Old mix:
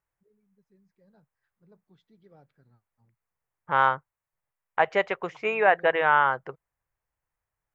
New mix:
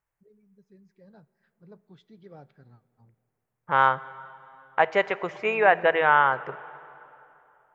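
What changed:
first voice +7.5 dB; reverb: on, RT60 3.0 s

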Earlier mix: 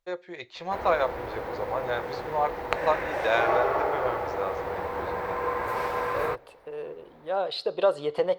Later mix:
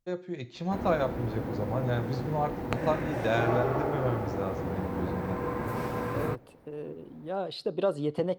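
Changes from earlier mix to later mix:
first voice: send +10.5 dB; second voice: send -6.5 dB; master: add ten-band EQ 125 Hz +10 dB, 250 Hz +12 dB, 500 Hz -6 dB, 1000 Hz -6 dB, 2000 Hz -6 dB, 4000 Hz -5 dB

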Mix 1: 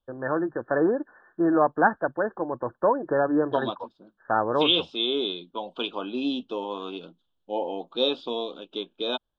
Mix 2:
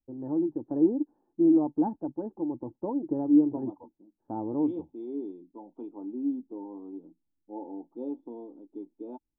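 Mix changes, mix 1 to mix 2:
first voice: add low shelf 270 Hz +11.5 dB; master: add vocal tract filter u

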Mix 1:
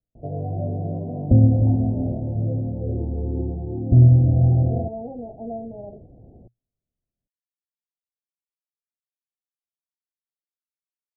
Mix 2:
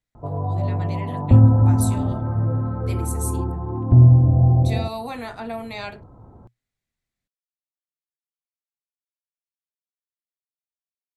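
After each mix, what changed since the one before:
background: add bell 98 Hz +4.5 dB 0.42 oct; master: remove steep low-pass 720 Hz 72 dB/oct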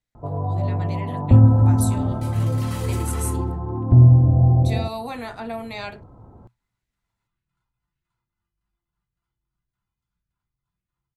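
second sound: unmuted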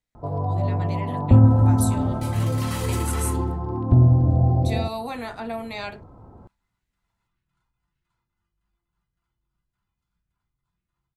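first sound: remove air absorption 320 m; second sound +4.0 dB; master: add bell 120 Hz -5.5 dB 0.2 oct

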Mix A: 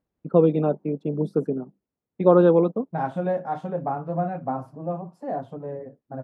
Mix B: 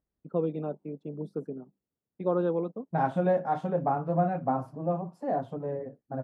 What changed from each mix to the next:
first voice -11.5 dB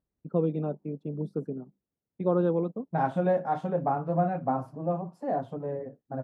first voice: add low shelf 180 Hz +10 dB

